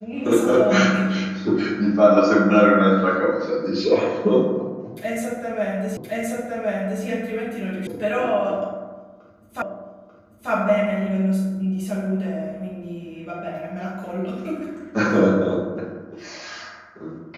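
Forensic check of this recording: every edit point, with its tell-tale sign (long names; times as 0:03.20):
0:05.97: the same again, the last 1.07 s
0:07.87: cut off before it has died away
0:09.62: the same again, the last 0.89 s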